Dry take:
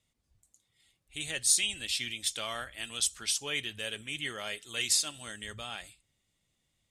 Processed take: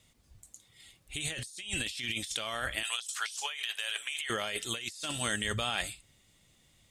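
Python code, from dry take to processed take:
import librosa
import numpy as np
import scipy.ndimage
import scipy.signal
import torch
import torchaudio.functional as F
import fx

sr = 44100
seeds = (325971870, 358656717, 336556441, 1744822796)

y = fx.highpass(x, sr, hz=740.0, slope=24, at=(2.83, 4.3))
y = fx.over_compress(y, sr, threshold_db=-43.0, ratio=-1.0)
y = y * 10.0 ** (5.5 / 20.0)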